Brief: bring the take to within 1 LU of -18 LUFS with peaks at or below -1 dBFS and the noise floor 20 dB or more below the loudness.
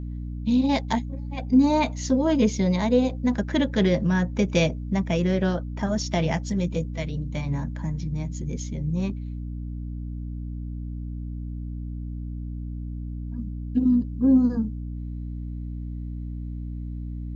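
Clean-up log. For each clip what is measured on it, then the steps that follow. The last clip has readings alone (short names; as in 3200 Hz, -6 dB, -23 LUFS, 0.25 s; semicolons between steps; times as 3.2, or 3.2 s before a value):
hum 60 Hz; harmonics up to 300 Hz; hum level -30 dBFS; loudness -26.0 LUFS; peak -8.5 dBFS; loudness target -18.0 LUFS
-> notches 60/120/180/240/300 Hz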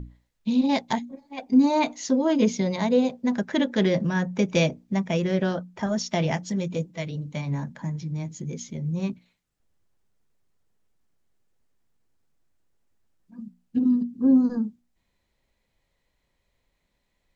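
hum none; loudness -25.0 LUFS; peak -8.5 dBFS; loudness target -18.0 LUFS
-> gain +7 dB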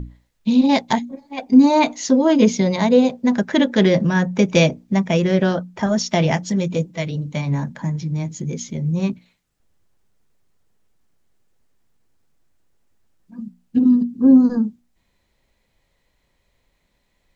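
loudness -18.0 LUFS; peak -1.5 dBFS; noise floor -68 dBFS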